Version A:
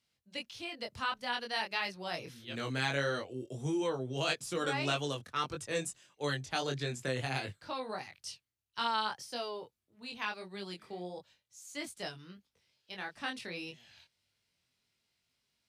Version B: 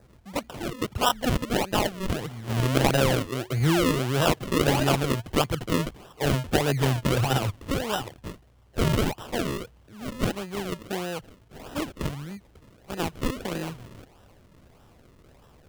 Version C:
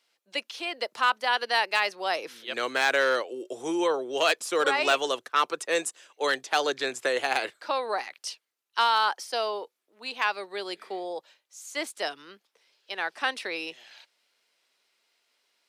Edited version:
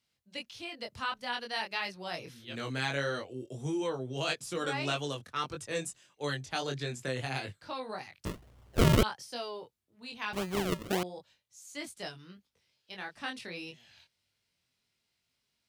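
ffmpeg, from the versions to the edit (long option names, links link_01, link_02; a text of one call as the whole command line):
ffmpeg -i take0.wav -i take1.wav -filter_complex "[1:a]asplit=2[link_01][link_02];[0:a]asplit=3[link_03][link_04][link_05];[link_03]atrim=end=8.252[link_06];[link_01]atrim=start=8.248:end=9.032[link_07];[link_04]atrim=start=9.028:end=10.332[link_08];[link_02]atrim=start=10.328:end=11.032[link_09];[link_05]atrim=start=11.028[link_10];[link_06][link_07]acrossfade=duration=0.004:curve1=hsin:curve2=hsin[link_11];[link_11][link_08]acrossfade=duration=0.004:curve1=hsin:curve2=hsin[link_12];[link_12][link_09]acrossfade=duration=0.004:curve1=hsin:curve2=hsin[link_13];[link_13][link_10]acrossfade=duration=0.004:curve1=hsin:curve2=hsin" out.wav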